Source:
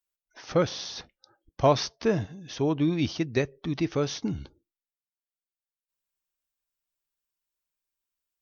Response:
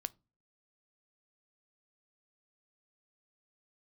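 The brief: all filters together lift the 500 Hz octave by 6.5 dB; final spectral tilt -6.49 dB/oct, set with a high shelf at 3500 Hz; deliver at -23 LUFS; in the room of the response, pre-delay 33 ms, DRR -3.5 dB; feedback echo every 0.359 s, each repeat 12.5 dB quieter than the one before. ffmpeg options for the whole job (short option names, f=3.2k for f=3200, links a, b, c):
-filter_complex "[0:a]equalizer=f=500:t=o:g=8,highshelf=f=3.5k:g=-7.5,aecho=1:1:359|718|1077:0.237|0.0569|0.0137,asplit=2[a][b];[1:a]atrim=start_sample=2205,adelay=33[c];[b][c]afir=irnorm=-1:irlink=0,volume=5dB[d];[a][d]amix=inputs=2:normalize=0,volume=-4dB"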